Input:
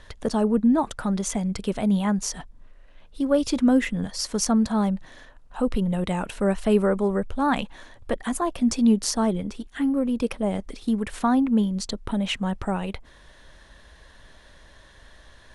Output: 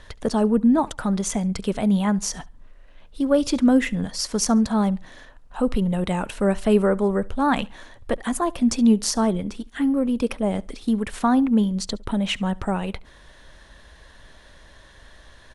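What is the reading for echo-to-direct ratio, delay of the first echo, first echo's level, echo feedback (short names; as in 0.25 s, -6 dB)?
-23.5 dB, 70 ms, -24.0 dB, 30%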